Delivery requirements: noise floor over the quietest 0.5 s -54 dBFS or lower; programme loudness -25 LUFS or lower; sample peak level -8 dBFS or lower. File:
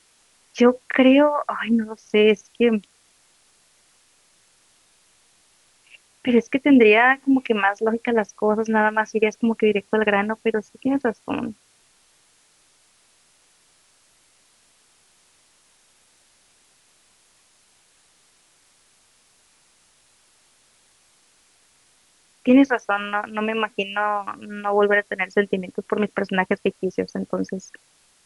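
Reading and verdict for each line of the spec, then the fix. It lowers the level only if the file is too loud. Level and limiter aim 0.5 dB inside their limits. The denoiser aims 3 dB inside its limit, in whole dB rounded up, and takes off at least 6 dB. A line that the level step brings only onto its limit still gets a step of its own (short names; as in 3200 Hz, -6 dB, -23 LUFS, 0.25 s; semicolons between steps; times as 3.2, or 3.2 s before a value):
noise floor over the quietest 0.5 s -59 dBFS: OK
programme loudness -20.5 LUFS: fail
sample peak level -3.5 dBFS: fail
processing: gain -5 dB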